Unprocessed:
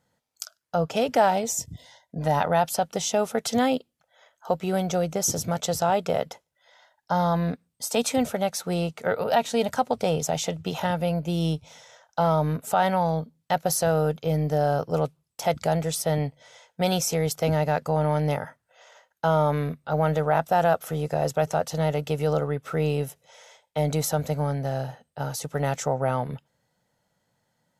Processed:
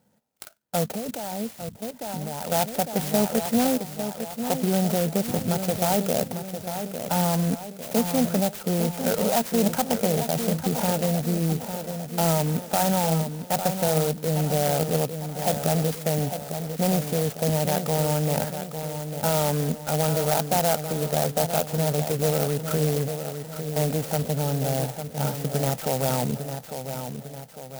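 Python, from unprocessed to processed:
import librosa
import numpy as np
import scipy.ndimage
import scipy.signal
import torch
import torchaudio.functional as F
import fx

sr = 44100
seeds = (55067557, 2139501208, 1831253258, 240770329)

p1 = fx.over_compress(x, sr, threshold_db=-30.0, ratio=-1.0)
p2 = x + F.gain(torch.from_numpy(p1), -2.0).numpy()
p3 = fx.notch_comb(p2, sr, f0_hz=1100.0)
p4 = fx.echo_feedback(p3, sr, ms=852, feedback_pct=49, wet_db=-8.5)
p5 = fx.level_steps(p4, sr, step_db=15, at=(0.84, 2.52))
p6 = fx.air_absorb(p5, sr, metres=170.0)
p7 = fx.small_body(p6, sr, hz=(210.0, 2400.0), ring_ms=90, db=10)
p8 = fx.clock_jitter(p7, sr, seeds[0], jitter_ms=0.12)
y = F.gain(torch.from_numpy(p8), -2.0).numpy()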